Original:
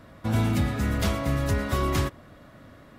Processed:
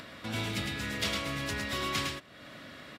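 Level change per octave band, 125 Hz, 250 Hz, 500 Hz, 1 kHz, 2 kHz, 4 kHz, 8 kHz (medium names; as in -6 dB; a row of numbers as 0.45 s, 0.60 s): -13.5 dB, -10.0 dB, -9.0 dB, -6.0 dB, 0.0 dB, +4.0 dB, -1.5 dB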